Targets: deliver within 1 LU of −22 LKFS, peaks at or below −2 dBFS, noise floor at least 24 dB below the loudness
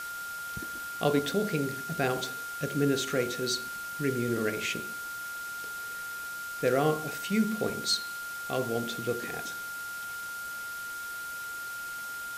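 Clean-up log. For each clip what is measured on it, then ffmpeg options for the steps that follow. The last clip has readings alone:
interfering tone 1,400 Hz; level of the tone −36 dBFS; background noise floor −38 dBFS; target noise floor −56 dBFS; integrated loudness −32.0 LKFS; sample peak −11.5 dBFS; target loudness −22.0 LKFS
→ -af "bandreject=frequency=1400:width=30"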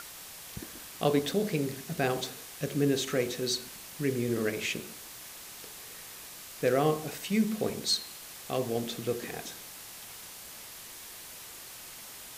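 interfering tone none found; background noise floor −46 dBFS; target noise floor −57 dBFS
→ -af "afftdn=noise_reduction=11:noise_floor=-46"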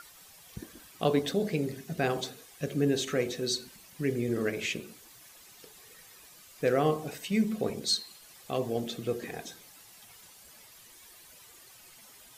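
background noise floor −54 dBFS; target noise floor −55 dBFS
→ -af "afftdn=noise_reduction=6:noise_floor=-54"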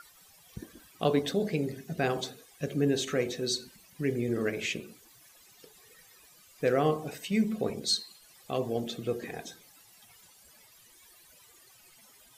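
background noise floor −58 dBFS; integrated loudness −31.0 LKFS; sample peak −12.0 dBFS; target loudness −22.0 LKFS
→ -af "volume=9dB"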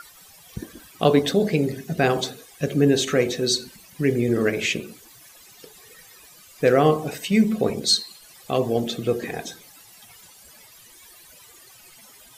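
integrated loudness −22.0 LKFS; sample peak −3.0 dBFS; background noise floor −49 dBFS

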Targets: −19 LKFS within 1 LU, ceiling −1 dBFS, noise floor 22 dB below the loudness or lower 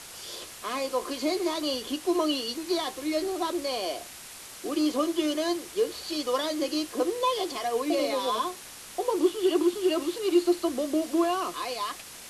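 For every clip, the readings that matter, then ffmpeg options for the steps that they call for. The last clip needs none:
background noise floor −45 dBFS; target noise floor −51 dBFS; integrated loudness −28.5 LKFS; sample peak −11.5 dBFS; target loudness −19.0 LKFS
→ -af "afftdn=noise_reduction=6:noise_floor=-45"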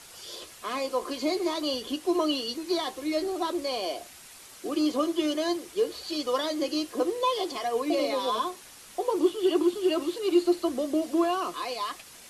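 background noise floor −49 dBFS; target noise floor −51 dBFS
→ -af "afftdn=noise_reduction=6:noise_floor=-49"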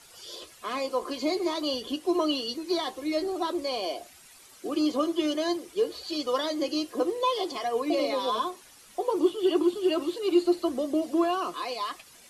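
background noise floor −53 dBFS; integrated loudness −28.5 LKFS; sample peak −12.0 dBFS; target loudness −19.0 LKFS
→ -af "volume=9.5dB"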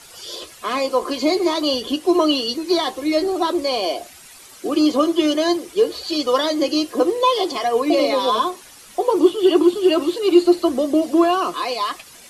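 integrated loudness −19.0 LKFS; sample peak −2.5 dBFS; background noise floor −44 dBFS

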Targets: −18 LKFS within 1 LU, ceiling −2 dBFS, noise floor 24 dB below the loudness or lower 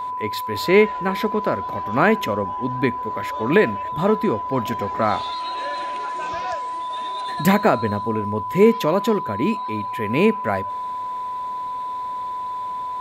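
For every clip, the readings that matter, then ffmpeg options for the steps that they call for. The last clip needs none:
interfering tone 1,000 Hz; level of the tone −25 dBFS; integrated loudness −22.0 LKFS; sample peak −3.0 dBFS; target loudness −18.0 LKFS
→ -af "bandreject=frequency=1000:width=30"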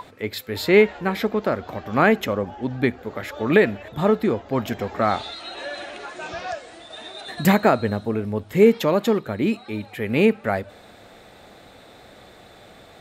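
interfering tone none found; integrated loudness −22.0 LKFS; sample peak −3.5 dBFS; target loudness −18.0 LKFS
→ -af "volume=4dB,alimiter=limit=-2dB:level=0:latency=1"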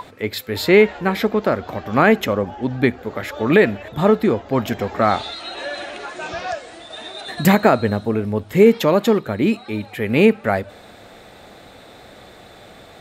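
integrated loudness −18.5 LKFS; sample peak −2.0 dBFS; background noise floor −44 dBFS

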